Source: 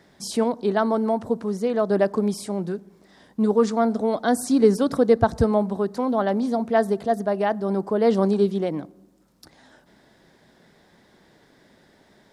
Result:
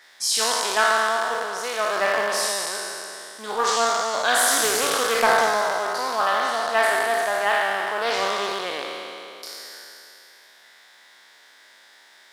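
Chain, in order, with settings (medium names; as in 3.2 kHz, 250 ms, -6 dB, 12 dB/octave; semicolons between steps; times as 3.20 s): spectral sustain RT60 2.92 s; high-pass 1.4 kHz 12 dB/octave; short-mantissa float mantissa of 4-bit; loudspeaker Doppler distortion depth 0.21 ms; trim +7.5 dB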